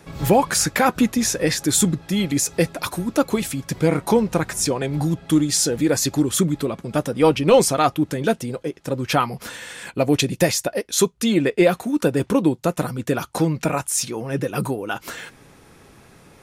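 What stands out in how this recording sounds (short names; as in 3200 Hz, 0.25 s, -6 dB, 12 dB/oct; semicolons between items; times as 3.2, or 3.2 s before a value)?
noise floor -50 dBFS; spectral tilt -4.5 dB/oct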